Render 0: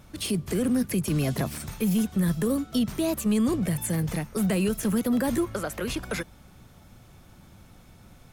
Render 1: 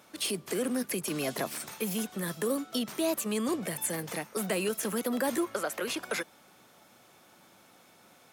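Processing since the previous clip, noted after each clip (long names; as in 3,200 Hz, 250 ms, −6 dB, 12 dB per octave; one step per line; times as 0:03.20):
high-pass filter 380 Hz 12 dB per octave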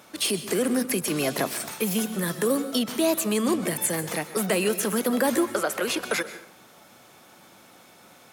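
dense smooth reverb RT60 0.53 s, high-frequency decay 0.8×, pre-delay 115 ms, DRR 13 dB
level +6.5 dB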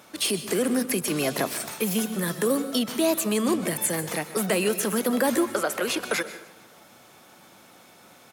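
repeating echo 151 ms, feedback 55%, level −22.5 dB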